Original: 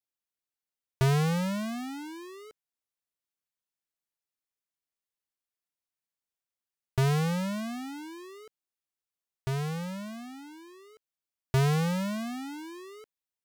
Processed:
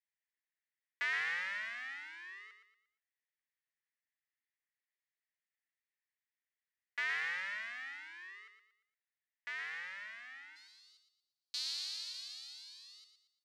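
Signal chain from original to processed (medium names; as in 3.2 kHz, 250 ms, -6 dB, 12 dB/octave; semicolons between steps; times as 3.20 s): ladder band-pass 2 kHz, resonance 75%, from 10.55 s 4.6 kHz; feedback delay 116 ms, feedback 37%, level -8 dB; trim +7.5 dB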